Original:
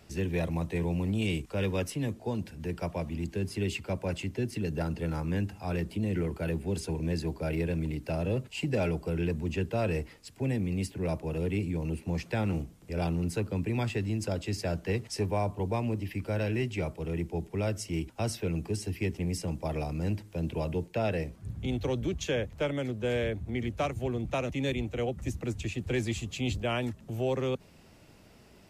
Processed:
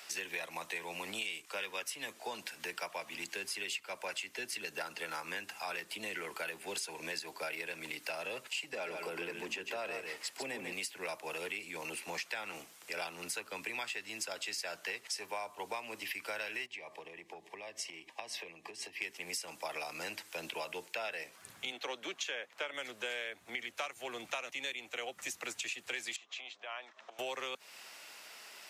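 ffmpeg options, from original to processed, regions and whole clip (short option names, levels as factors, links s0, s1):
-filter_complex "[0:a]asettb=1/sr,asplit=3[s0][s1][s2];[s0]atrim=end=8.724[s3];[s1]atrim=start=8.72:end=10.73,asetpts=PTS-STARTPTS,afade=t=in:d=0.004:c=qsin,afade=t=out:st=2.006:d=0.004:c=qsin,equalizer=f=300:w=0.35:g=8,acompressor=threshold=0.0316:ratio=2:attack=3.2:release=140:knee=1:detection=peak,aecho=1:1:144:0.447,atrim=end_sample=88641[s4];[s2]atrim=start=10.726[s5];[s3][s4]acrossfade=d=0.004:c1=hsin:c2=qsin[s6];[s6][s5]acrossfade=d=0.004:c1=qsin:c2=hsin,asettb=1/sr,asplit=3[s7][s8][s9];[s7]atrim=end=16.664[s10];[s8]atrim=start=16.66:end=19.02,asetpts=PTS-STARTPTS,afade=t=in:d=0.004:c=qsin,afade=t=out:st=2.356:d=0.004:c=qsin,asuperstop=centerf=1400:order=8:qfactor=3.7,aemphasis=mode=reproduction:type=75kf,acompressor=threshold=0.0112:ratio=12:attack=3.2:release=140:knee=1:detection=peak[s11];[s9]atrim=start=19.016[s12];[s10][s11]acrossfade=d=0.004:c1=hsin:c2=qsin[s13];[s13][s12]acrossfade=d=0.004:c1=qsin:c2=hsin,asettb=1/sr,asplit=3[s14][s15][s16];[s14]atrim=end=21.724[s17];[s15]atrim=start=21.72:end=22.74,asetpts=PTS-STARTPTS,afade=t=in:d=0.004:c=qsin,afade=t=out:st=1.016:d=0.004:c=qsin,highpass=200,aemphasis=mode=reproduction:type=cd[s18];[s16]atrim=start=22.736[s19];[s17][s18]acrossfade=d=0.004:c1=hsin:c2=qsin[s20];[s20][s19]acrossfade=d=0.004:c1=qsin:c2=hsin,asettb=1/sr,asplit=3[s21][s22][s23];[s21]atrim=end=26.164[s24];[s22]atrim=start=26.16:end=27.19,asetpts=PTS-STARTPTS,afade=t=in:d=0.004:c=qsin,afade=t=out:st=1.026:d=0.004:c=qsin,acompressor=threshold=0.00631:ratio=12:attack=3.2:release=140:knee=1:detection=peak,highpass=360,equalizer=f=680:t=q:w=4:g=6,equalizer=f=1100:t=q:w=4:g=5,equalizer=f=2800:t=q:w=4:g=-4,equalizer=f=4600:t=q:w=4:g=-7,lowpass=f=5200:w=0.5412,lowpass=f=5200:w=1.3066[s25];[s23]atrim=start=27.186[s26];[s24][s25]acrossfade=d=0.004:c1=hsin:c2=qsin[s27];[s27][s26]acrossfade=d=0.004:c1=qsin:c2=hsin,highpass=1200,acompressor=threshold=0.00355:ratio=6,volume=3.98"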